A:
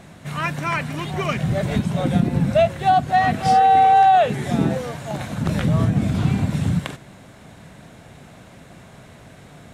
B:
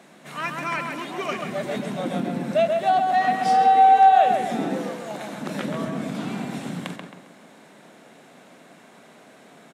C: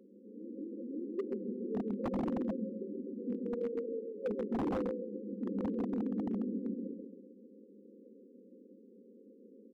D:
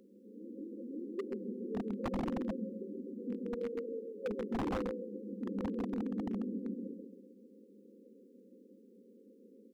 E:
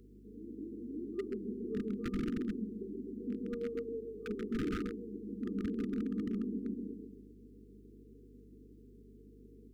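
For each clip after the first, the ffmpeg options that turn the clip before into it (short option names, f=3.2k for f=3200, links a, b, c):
-filter_complex "[0:a]highpass=f=220:w=0.5412,highpass=f=220:w=1.3066,asplit=2[a][b];[b]adelay=134,lowpass=f=2.6k:p=1,volume=-3.5dB,asplit=2[c][d];[d]adelay=134,lowpass=f=2.6k:p=1,volume=0.44,asplit=2[e][f];[f]adelay=134,lowpass=f=2.6k:p=1,volume=0.44,asplit=2[g][h];[h]adelay=134,lowpass=f=2.6k:p=1,volume=0.44,asplit=2[i][j];[j]adelay=134,lowpass=f=2.6k:p=1,volume=0.44,asplit=2[k][l];[l]adelay=134,lowpass=f=2.6k:p=1,volume=0.44[m];[a][c][e][g][i][k][m]amix=inputs=7:normalize=0,volume=-4dB"
-af "afftfilt=real='re*between(b*sr/4096,190,540)':imag='im*between(b*sr/4096,190,540)':win_size=4096:overlap=0.75,aeval=exprs='0.0596*(abs(mod(val(0)/0.0596+3,4)-2)-1)':c=same,volume=-3.5dB"
-af "equalizer=f=350:w=0.31:g=-9.5,volume=7dB"
-af "afftfilt=real='re*(1-between(b*sr/4096,480,1200))':imag='im*(1-between(b*sr/4096,480,1200))':win_size=4096:overlap=0.75,aeval=exprs='val(0)+0.00112*(sin(2*PI*50*n/s)+sin(2*PI*2*50*n/s)/2+sin(2*PI*3*50*n/s)/3+sin(2*PI*4*50*n/s)/4+sin(2*PI*5*50*n/s)/5)':c=same,volume=1dB"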